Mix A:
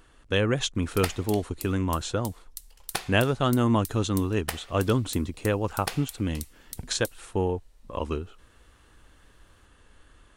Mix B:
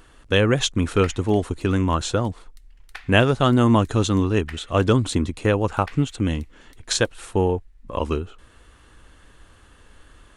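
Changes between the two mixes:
speech +6.0 dB
background: add resonant band-pass 1,900 Hz, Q 2.1

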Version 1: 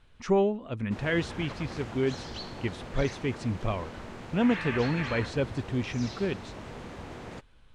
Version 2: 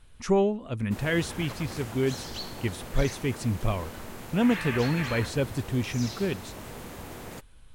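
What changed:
speech: add low-shelf EQ 130 Hz +6.5 dB
master: remove high-frequency loss of the air 110 metres

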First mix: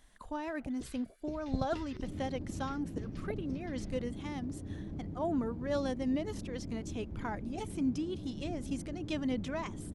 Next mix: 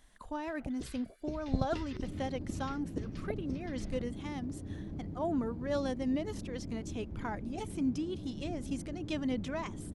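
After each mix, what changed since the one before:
first sound +3.5 dB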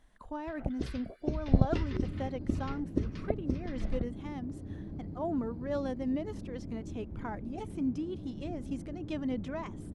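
first sound +9.0 dB
master: add high-shelf EQ 2,600 Hz −10.5 dB

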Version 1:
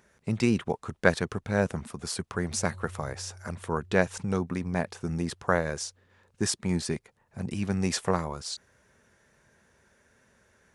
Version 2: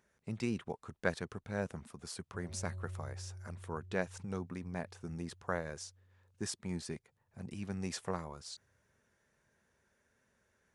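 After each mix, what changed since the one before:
speech −11.5 dB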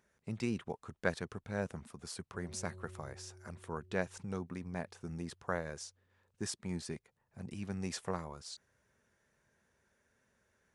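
reverb: off

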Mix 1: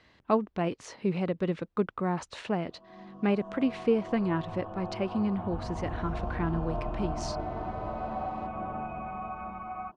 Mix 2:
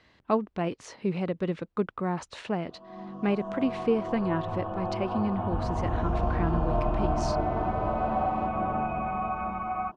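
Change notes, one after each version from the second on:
background +7.0 dB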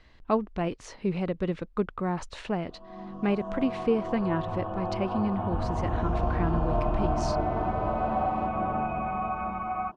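speech: remove high-pass filter 110 Hz 12 dB per octave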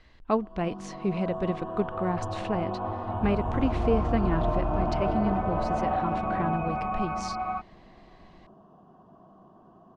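background: entry −2.30 s

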